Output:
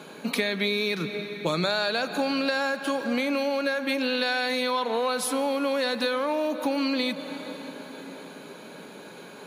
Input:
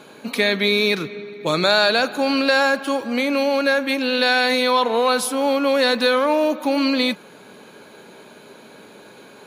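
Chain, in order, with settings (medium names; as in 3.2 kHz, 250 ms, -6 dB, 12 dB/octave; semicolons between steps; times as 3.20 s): high-pass 130 Hz; peaking EQ 170 Hz +8 dB 0.22 oct; reverberation RT60 5.0 s, pre-delay 98 ms, DRR 16 dB; compression, threshold -23 dBFS, peak gain reduction 10.5 dB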